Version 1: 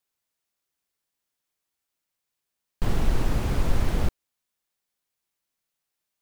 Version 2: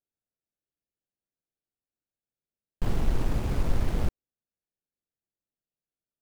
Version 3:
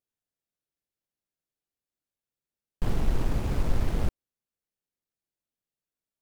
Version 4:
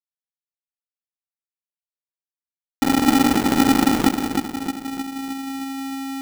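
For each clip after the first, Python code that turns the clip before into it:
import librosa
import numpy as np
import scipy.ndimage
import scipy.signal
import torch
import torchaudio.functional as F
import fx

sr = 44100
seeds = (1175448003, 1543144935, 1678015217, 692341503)

y1 = fx.wiener(x, sr, points=41)
y1 = y1 * 10.0 ** (-2.5 / 20.0)
y2 = fx.vibrato(y1, sr, rate_hz=3.2, depth_cents=34.0)
y3 = fx.delta_hold(y2, sr, step_db=-24.5)
y3 = fx.echo_split(y3, sr, split_hz=320.0, low_ms=310, high_ms=188, feedback_pct=52, wet_db=-6.0)
y3 = y3 * np.sign(np.sin(2.0 * np.pi * 270.0 * np.arange(len(y3)) / sr))
y3 = y3 * 10.0 ** (5.0 / 20.0)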